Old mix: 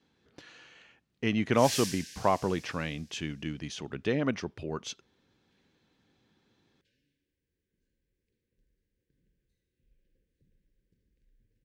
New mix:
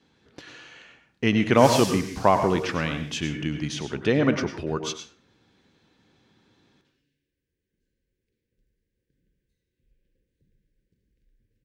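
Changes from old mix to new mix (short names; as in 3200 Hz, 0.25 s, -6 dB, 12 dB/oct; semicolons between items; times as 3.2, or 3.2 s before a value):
speech +4.0 dB; reverb: on, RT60 0.45 s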